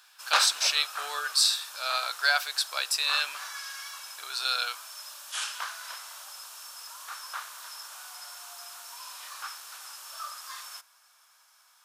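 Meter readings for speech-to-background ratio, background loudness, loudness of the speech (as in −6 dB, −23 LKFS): 10.5 dB, −37.0 LKFS, −26.5 LKFS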